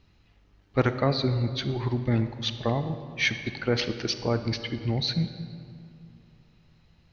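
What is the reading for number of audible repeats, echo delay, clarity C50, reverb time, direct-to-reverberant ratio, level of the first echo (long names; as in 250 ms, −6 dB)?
no echo audible, no echo audible, 10.0 dB, 2.5 s, 9.5 dB, no echo audible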